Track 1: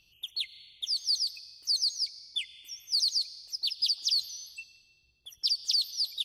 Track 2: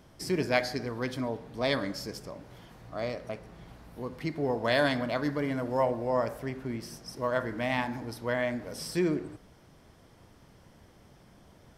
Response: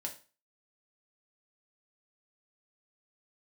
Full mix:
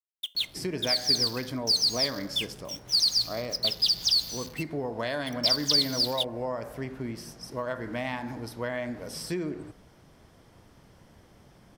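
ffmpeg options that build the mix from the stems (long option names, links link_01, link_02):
-filter_complex "[0:a]acrusher=bits=6:mix=0:aa=0.5,volume=2dB,asplit=2[link_01][link_02];[link_02]volume=-10.5dB[link_03];[1:a]acompressor=threshold=-29dB:ratio=6,adelay=350,volume=1dB[link_04];[2:a]atrim=start_sample=2205[link_05];[link_03][link_05]afir=irnorm=-1:irlink=0[link_06];[link_01][link_04][link_06]amix=inputs=3:normalize=0"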